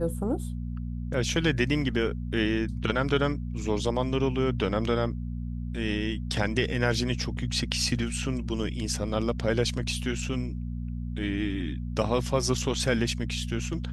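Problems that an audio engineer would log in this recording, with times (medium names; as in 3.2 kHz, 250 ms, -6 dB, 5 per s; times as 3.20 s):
hum 60 Hz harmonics 4 -33 dBFS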